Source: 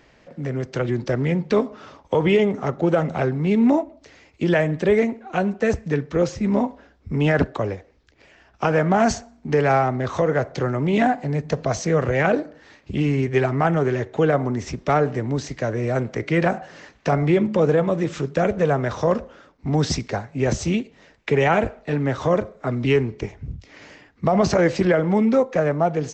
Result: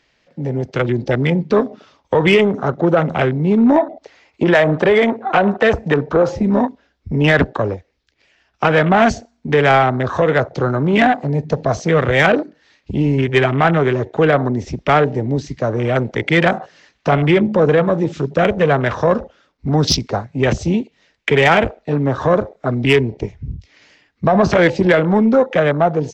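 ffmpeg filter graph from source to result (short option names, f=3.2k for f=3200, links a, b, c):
-filter_complex "[0:a]asettb=1/sr,asplit=3[a][b][c];[a]atrim=end=3.764[d];[b]atrim=start=3.76:end=6.43,asetpts=PTS-STARTPTS,afade=t=in:d=0.004:c=qsin,afade=t=out:st=2.666:d=0.004:c=qsin,equalizer=f=860:t=o:w=2.3:g=11,acompressor=threshold=-14dB:ratio=4:attack=3.2:release=140:knee=1:detection=peak[e];[c]atrim=start=6.426[f];[d][e]acrossfade=d=0.004:c1=hsin:c2=qsin[g];[g][f]acrossfade=d=0.004:c1=qsin:c2=hsin,afwtdn=0.0282,equalizer=f=4k:w=0.5:g=11,acontrast=57,volume=-1dB"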